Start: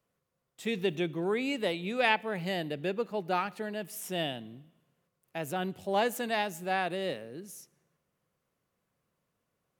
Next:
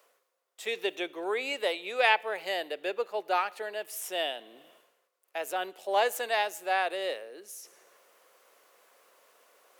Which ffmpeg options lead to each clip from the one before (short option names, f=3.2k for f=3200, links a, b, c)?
-af "highpass=f=440:w=0.5412,highpass=f=440:w=1.3066,areverse,acompressor=mode=upward:threshold=-49dB:ratio=2.5,areverse,volume=3dB"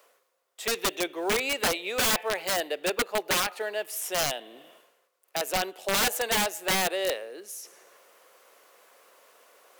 -filter_complex "[0:a]asplit=2[a][b];[b]acrusher=bits=5:mode=log:mix=0:aa=0.000001,volume=-3dB[c];[a][c]amix=inputs=2:normalize=0,aeval=exprs='(mod(8.91*val(0)+1,2)-1)/8.91':c=same"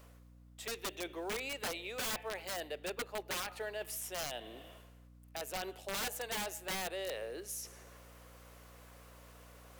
-af "areverse,acompressor=threshold=-33dB:ratio=10,areverse,alimiter=level_in=6dB:limit=-24dB:level=0:latency=1:release=90,volume=-6dB,aeval=exprs='val(0)+0.00178*(sin(2*PI*60*n/s)+sin(2*PI*2*60*n/s)/2+sin(2*PI*3*60*n/s)/3+sin(2*PI*4*60*n/s)/4+sin(2*PI*5*60*n/s)/5)':c=same,volume=-2dB"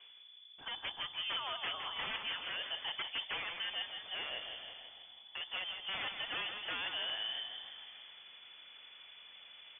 -filter_complex "[0:a]aeval=exprs='0.0282*(cos(1*acos(clip(val(0)/0.0282,-1,1)))-cos(1*PI/2))+0.00141*(cos(8*acos(clip(val(0)/0.0282,-1,1)))-cos(8*PI/2))':c=same,asplit=2[a][b];[b]asplit=8[c][d][e][f][g][h][i][j];[c]adelay=164,afreqshift=-36,volume=-7dB[k];[d]adelay=328,afreqshift=-72,volume=-11.2dB[l];[e]adelay=492,afreqshift=-108,volume=-15.3dB[m];[f]adelay=656,afreqshift=-144,volume=-19.5dB[n];[g]adelay=820,afreqshift=-180,volume=-23.6dB[o];[h]adelay=984,afreqshift=-216,volume=-27.8dB[p];[i]adelay=1148,afreqshift=-252,volume=-31.9dB[q];[j]adelay=1312,afreqshift=-288,volume=-36.1dB[r];[k][l][m][n][o][p][q][r]amix=inputs=8:normalize=0[s];[a][s]amix=inputs=2:normalize=0,lowpass=f=3k:t=q:w=0.5098,lowpass=f=3k:t=q:w=0.6013,lowpass=f=3k:t=q:w=0.9,lowpass=f=3k:t=q:w=2.563,afreqshift=-3500"